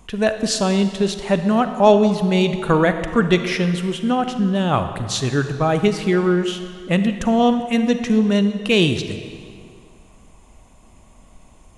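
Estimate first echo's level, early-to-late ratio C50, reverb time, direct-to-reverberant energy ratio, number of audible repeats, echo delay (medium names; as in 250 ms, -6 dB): no echo, 9.0 dB, 2.3 s, 8.5 dB, no echo, no echo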